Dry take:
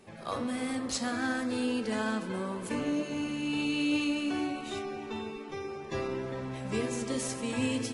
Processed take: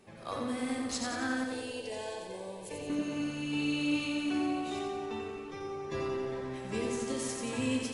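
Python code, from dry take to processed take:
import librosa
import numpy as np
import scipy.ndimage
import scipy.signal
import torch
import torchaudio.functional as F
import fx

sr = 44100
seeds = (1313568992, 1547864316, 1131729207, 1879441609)

y = fx.fixed_phaser(x, sr, hz=550.0, stages=4, at=(1.44, 2.9))
y = fx.echo_feedback(y, sr, ms=89, feedback_pct=57, wet_db=-4.5)
y = F.gain(torch.from_numpy(y), -3.5).numpy()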